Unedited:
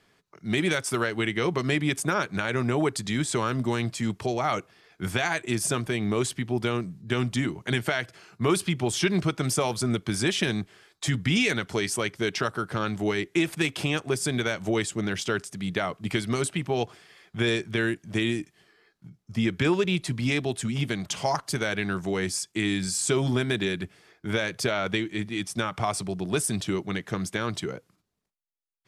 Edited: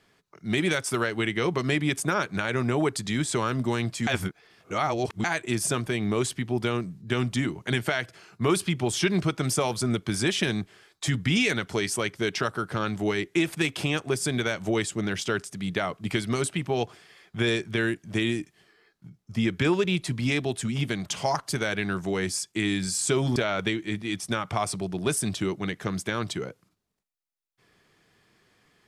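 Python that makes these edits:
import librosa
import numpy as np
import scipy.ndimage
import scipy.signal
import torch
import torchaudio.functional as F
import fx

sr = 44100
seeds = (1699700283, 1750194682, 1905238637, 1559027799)

y = fx.edit(x, sr, fx.reverse_span(start_s=4.07, length_s=1.17),
    fx.cut(start_s=23.36, length_s=1.27), tone=tone)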